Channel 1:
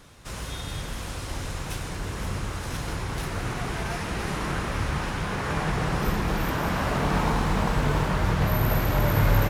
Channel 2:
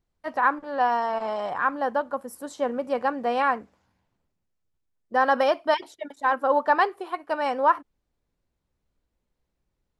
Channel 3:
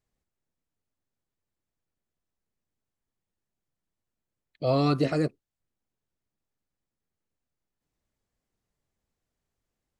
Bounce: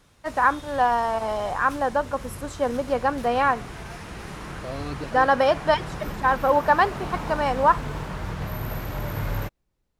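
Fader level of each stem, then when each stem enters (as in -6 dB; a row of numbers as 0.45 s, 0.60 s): -7.5 dB, +2.0 dB, -10.0 dB; 0.00 s, 0.00 s, 0.00 s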